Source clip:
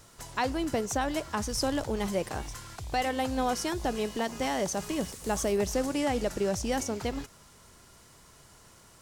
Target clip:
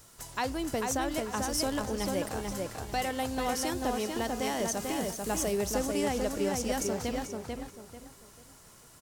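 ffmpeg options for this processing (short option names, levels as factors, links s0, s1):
-filter_complex "[0:a]highshelf=f=8400:g=10.5,asplit=2[s0][s1];[s1]adelay=442,lowpass=f=2900:p=1,volume=0.708,asplit=2[s2][s3];[s3]adelay=442,lowpass=f=2900:p=1,volume=0.31,asplit=2[s4][s5];[s5]adelay=442,lowpass=f=2900:p=1,volume=0.31,asplit=2[s6][s7];[s7]adelay=442,lowpass=f=2900:p=1,volume=0.31[s8];[s0][s2][s4][s6][s8]amix=inputs=5:normalize=0,volume=0.708"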